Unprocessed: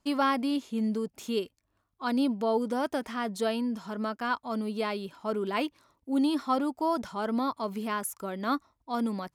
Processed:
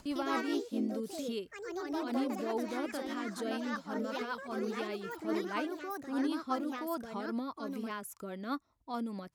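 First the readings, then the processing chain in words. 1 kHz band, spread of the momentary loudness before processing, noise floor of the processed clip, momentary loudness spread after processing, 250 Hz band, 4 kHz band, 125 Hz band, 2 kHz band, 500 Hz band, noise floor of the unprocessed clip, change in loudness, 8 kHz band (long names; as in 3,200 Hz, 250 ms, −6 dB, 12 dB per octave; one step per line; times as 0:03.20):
−7.5 dB, 7 LU, −63 dBFS, 7 LU, −6.0 dB, −6.5 dB, can't be measured, −4.5 dB, −6.0 dB, −77 dBFS, −6.0 dB, −6.0 dB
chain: upward compression, threshold −28 dBFS
delay with pitch and tempo change per echo 110 ms, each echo +3 semitones, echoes 3
rotating-speaker cabinet horn 5 Hz
level −6.5 dB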